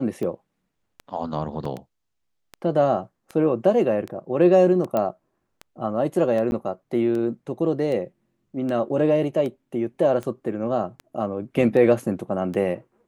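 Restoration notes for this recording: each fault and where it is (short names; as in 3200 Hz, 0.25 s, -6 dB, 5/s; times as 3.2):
tick 78 rpm -20 dBFS
1.65 gap 3.8 ms
4.97 pop -12 dBFS
6.51–6.52 gap 11 ms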